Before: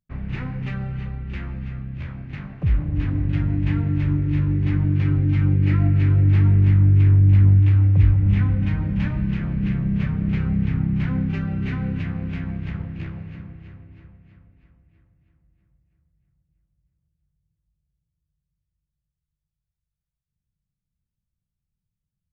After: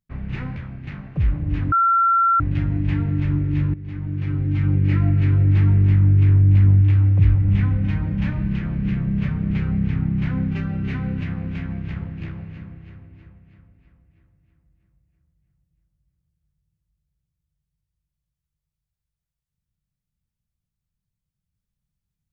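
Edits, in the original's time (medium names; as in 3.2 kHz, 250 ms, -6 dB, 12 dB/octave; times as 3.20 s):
0.56–2.02 s: delete
3.18 s: add tone 1.36 kHz -13.5 dBFS 0.68 s
4.52–5.56 s: fade in, from -16 dB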